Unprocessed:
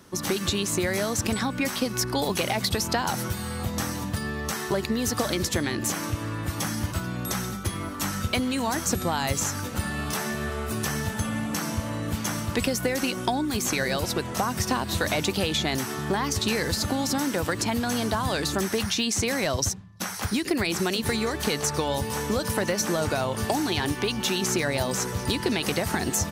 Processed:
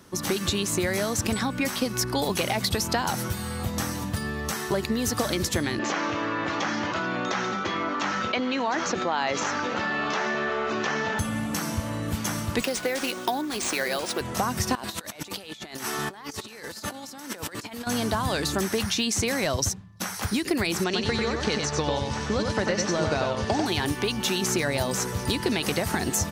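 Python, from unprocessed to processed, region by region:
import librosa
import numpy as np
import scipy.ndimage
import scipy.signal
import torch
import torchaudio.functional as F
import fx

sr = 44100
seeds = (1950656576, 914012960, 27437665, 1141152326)

y = fx.chain(x, sr, fx.bandpass_edges(low_hz=350.0, high_hz=3200.0),
    fx.resample_bad(factor=3, down='none', up='filtered'),
    fx.env_flatten(amount_pct=70), at=(5.79, 11.19))
y = fx.chain(y, sr, fx.highpass(hz=310.0, slope=12),
    fx.resample_bad(factor=3, down='none', up='hold'),
    fx.doppler_dist(depth_ms=0.1), at=(12.61, 14.21))
y = fx.chain(y, sr, fx.highpass(hz=460.0, slope=6),
    fx.over_compress(threshold_db=-35.0, ratio=-0.5), at=(14.75, 17.87))
y = fx.chain(y, sr, fx.law_mismatch(coded='A'),
    fx.lowpass(hz=6300.0, slope=24),
    fx.echo_single(ms=94, db=-4.0), at=(20.84, 23.66))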